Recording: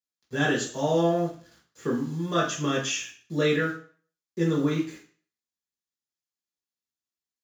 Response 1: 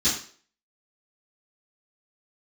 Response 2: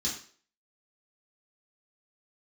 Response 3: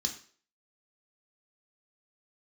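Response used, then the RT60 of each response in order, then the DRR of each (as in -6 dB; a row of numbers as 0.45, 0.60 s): 2; 0.45, 0.45, 0.45 s; -16.0, -7.0, 1.5 dB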